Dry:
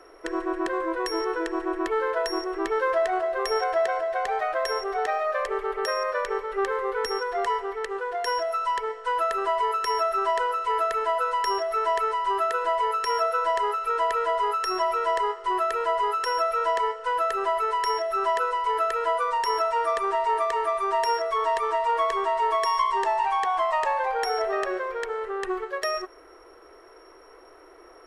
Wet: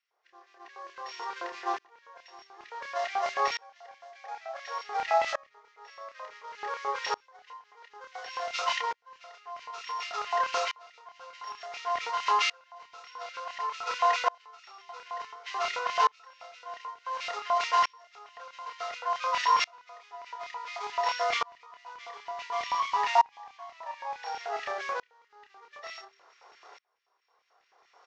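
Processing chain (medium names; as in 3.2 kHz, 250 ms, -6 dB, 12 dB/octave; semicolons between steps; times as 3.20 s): CVSD coder 32 kbps; formant-preserving pitch shift +1 st; LFO high-pass square 4.6 Hz 800–2300 Hz; doubling 29 ms -5 dB; de-hum 130.9 Hz, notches 3; sawtooth tremolo in dB swelling 0.56 Hz, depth 32 dB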